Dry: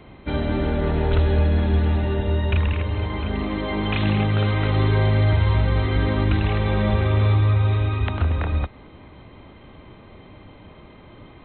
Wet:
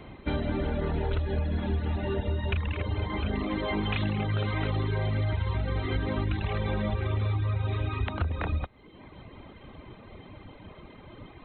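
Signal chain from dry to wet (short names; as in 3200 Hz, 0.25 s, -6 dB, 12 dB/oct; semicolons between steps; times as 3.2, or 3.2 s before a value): reverb removal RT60 0.9 s; compressor, threshold -25 dBFS, peak gain reduction 10.5 dB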